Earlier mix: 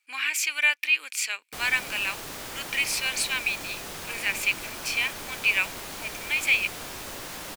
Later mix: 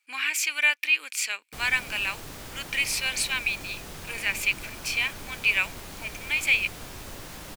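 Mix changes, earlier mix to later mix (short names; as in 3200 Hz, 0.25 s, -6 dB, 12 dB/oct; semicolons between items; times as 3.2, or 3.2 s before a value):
background -5.0 dB; master: add low shelf 190 Hz +12 dB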